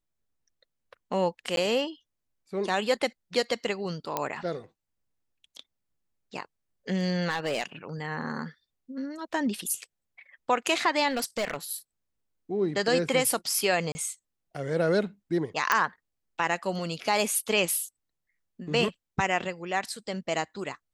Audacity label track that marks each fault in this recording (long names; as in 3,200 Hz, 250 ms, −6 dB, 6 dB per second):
1.560000	1.570000	drop-out
4.170000	4.170000	click −12 dBFS
7.290000	7.630000	clipping −23 dBFS
11.080000	11.560000	clipping −24.5 dBFS
13.920000	13.950000	drop-out 30 ms
15.720000	15.720000	click −8 dBFS